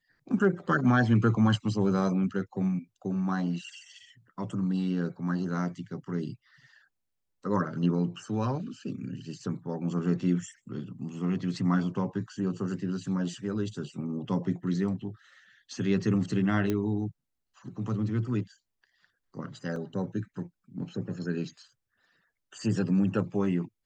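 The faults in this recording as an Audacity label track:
16.700000	16.700000	pop -16 dBFS
19.760000	19.760000	dropout 2.6 ms

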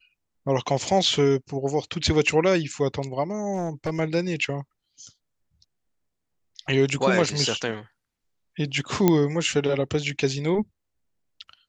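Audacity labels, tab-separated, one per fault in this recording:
3.530000	4.000000	clipped -22 dBFS
9.080000	9.080000	pop -5 dBFS

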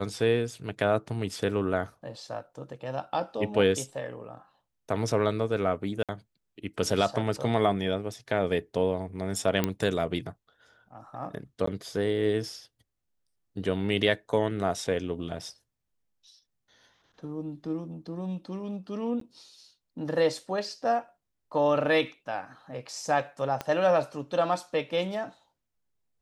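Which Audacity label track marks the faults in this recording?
6.030000	6.090000	dropout 57 ms
9.640000	9.640000	pop -11 dBFS
11.660000	11.670000	dropout 14 ms
19.200000	19.210000	dropout 13 ms
23.610000	23.610000	pop -17 dBFS

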